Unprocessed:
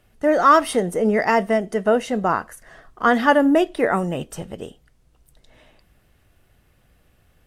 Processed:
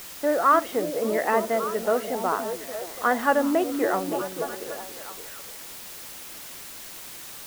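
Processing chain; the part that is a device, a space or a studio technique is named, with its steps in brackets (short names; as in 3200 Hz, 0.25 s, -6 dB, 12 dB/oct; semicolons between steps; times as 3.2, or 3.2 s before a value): wax cylinder (BPF 290–2300 Hz; wow and flutter; white noise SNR 13 dB); delay with a stepping band-pass 0.287 s, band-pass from 260 Hz, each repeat 0.7 oct, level -4 dB; gain -5 dB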